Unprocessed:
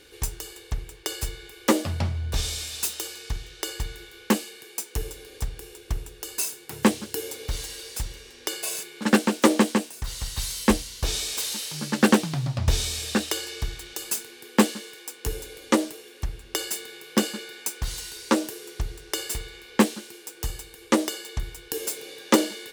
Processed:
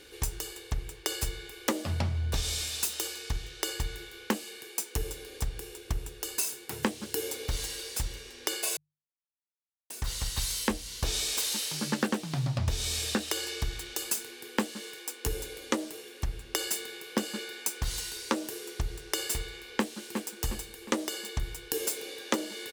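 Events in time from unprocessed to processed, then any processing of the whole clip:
0:08.77–0:09.90: silence
0:19.67–0:20.32: delay throw 360 ms, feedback 45%, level −15.5 dB
whole clip: mains-hum notches 50/100/150 Hz; downward compressor 12 to 1, threshold −25 dBFS

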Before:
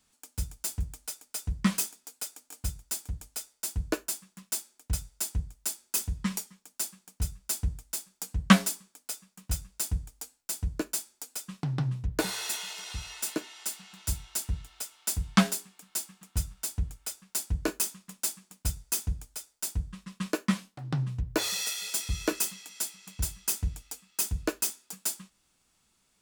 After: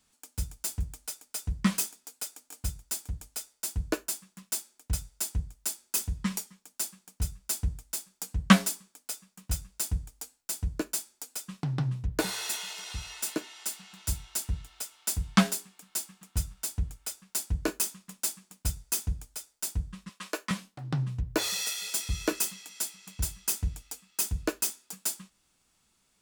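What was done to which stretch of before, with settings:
0:20.09–0:20.51: high-pass filter 520 Hz

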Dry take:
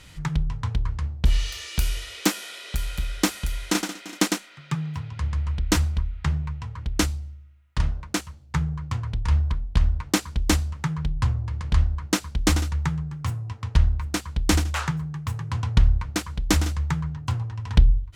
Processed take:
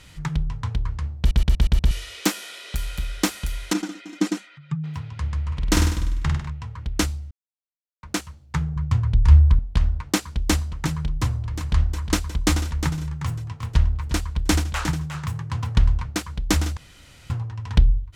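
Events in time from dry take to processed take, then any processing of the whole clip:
0:01.19: stutter in place 0.12 s, 6 plays
0:03.73–0:04.84: expanding power law on the bin magnitudes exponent 1.6
0:05.47–0:06.50: flutter between parallel walls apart 8.5 metres, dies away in 0.81 s
0:07.31–0:08.03: silence
0:08.76–0:09.59: low-shelf EQ 160 Hz +11 dB
0:10.24–0:10.82: delay throw 360 ms, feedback 75%, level −9.5 dB
0:11.53–0:16.07: single-tap delay 358 ms −9 dB
0:16.77–0:17.30: fill with room tone

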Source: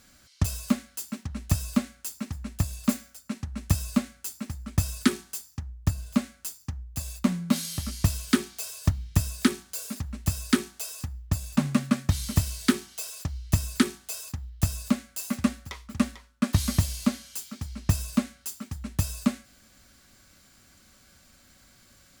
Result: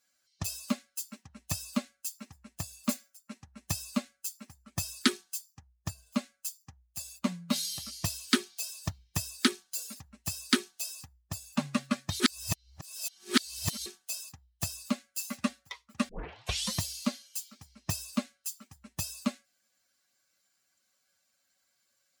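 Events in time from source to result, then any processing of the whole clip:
0:12.20–0:13.86: reverse
0:16.09: tape start 0.67 s
whole clip: spectral dynamics exaggerated over time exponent 1.5; dynamic equaliser 4,100 Hz, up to +6 dB, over −54 dBFS, Q 1.1; high-pass filter 360 Hz 6 dB per octave

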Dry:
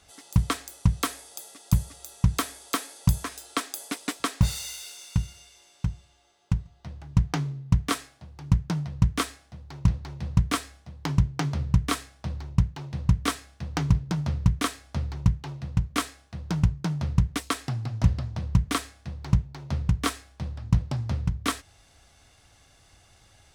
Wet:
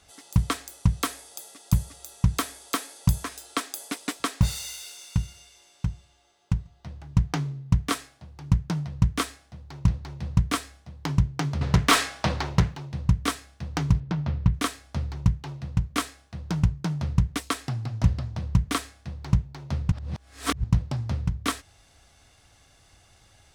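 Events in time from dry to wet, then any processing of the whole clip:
0:11.61–0:12.76: mid-hump overdrive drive 27 dB, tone 3,800 Hz, clips at −7.5 dBFS
0:14.00–0:14.54: low-pass filter 3,600 Hz
0:19.92–0:20.64: reverse

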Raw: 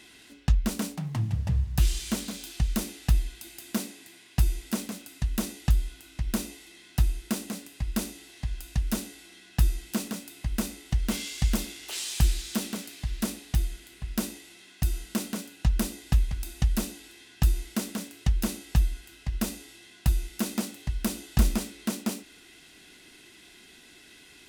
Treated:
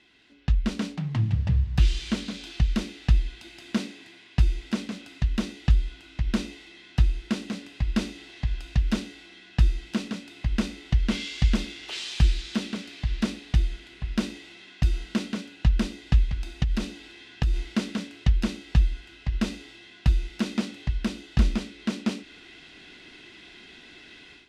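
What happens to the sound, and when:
0:16.63–0:17.70: downward compressor, threshold −23 dBFS
whole clip: Chebyshev low-pass filter 3,500 Hz, order 2; dynamic equaliser 790 Hz, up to −5 dB, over −49 dBFS, Q 1.1; automatic gain control gain up to 13 dB; level −7 dB

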